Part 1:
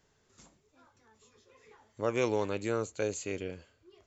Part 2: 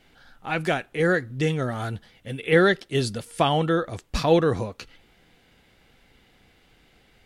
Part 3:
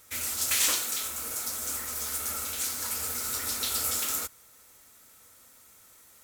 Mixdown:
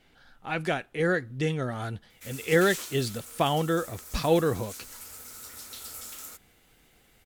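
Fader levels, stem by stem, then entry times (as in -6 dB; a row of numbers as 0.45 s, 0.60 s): mute, -4.0 dB, -12.0 dB; mute, 0.00 s, 2.10 s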